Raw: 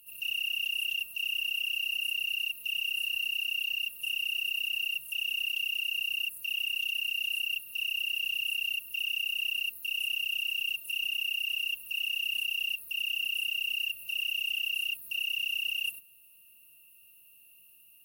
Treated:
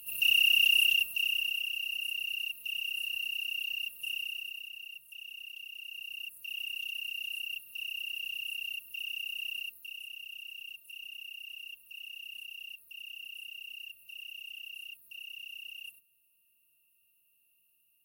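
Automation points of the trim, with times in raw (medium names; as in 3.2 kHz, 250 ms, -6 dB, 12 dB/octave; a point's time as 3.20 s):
0.77 s +8 dB
1.72 s -3.5 dB
4.15 s -3.5 dB
4.74 s -13.5 dB
5.70 s -13.5 dB
6.60 s -6 dB
9.58 s -6 dB
10.07 s -13 dB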